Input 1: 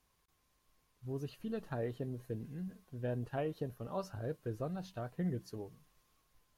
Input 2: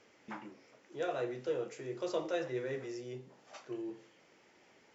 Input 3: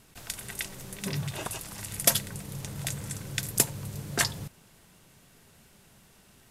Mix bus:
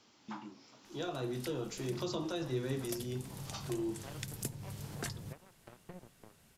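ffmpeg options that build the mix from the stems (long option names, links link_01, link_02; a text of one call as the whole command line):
ffmpeg -i stem1.wav -i stem2.wav -i stem3.wav -filter_complex "[0:a]acompressor=threshold=-42dB:ratio=2.5,acrusher=bits=5:mix=0:aa=0.5,adelay=700,volume=-14dB[link_01];[1:a]equalizer=frequency=250:width_type=o:width=1:gain=3,equalizer=frequency=500:width_type=o:width=1:gain=-12,equalizer=frequency=1000:width_type=o:width=1:gain=4,equalizer=frequency=2000:width_type=o:width=1:gain=-11,equalizer=frequency=4000:width_type=o:width=1:gain=8,volume=1.5dB,asplit=2[link_02][link_03];[2:a]adelay=850,volume=-15dB[link_04];[link_03]apad=whole_len=324423[link_05];[link_04][link_05]sidechaincompress=threshold=-45dB:ratio=8:attack=16:release=508[link_06];[link_01][link_02][link_06]amix=inputs=3:normalize=0,dynaudnorm=framelen=530:gausssize=3:maxgain=8dB,acrossover=split=350[link_07][link_08];[link_08]acompressor=threshold=-41dB:ratio=4[link_09];[link_07][link_09]amix=inputs=2:normalize=0" out.wav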